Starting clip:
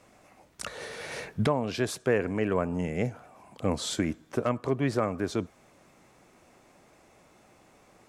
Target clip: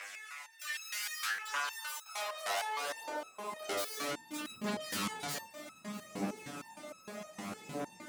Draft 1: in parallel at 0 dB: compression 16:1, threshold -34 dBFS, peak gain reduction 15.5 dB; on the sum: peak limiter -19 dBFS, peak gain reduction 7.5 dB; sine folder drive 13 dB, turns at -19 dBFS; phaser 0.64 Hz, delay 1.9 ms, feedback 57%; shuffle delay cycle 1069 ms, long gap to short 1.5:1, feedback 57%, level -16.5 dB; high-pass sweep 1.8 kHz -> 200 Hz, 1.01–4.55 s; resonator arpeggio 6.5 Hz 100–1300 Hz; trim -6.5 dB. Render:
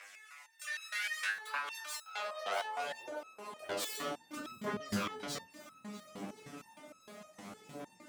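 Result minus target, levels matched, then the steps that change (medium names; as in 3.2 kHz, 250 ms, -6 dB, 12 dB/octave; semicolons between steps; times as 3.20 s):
sine folder: distortion -15 dB
change: sine folder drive 21 dB, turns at -19 dBFS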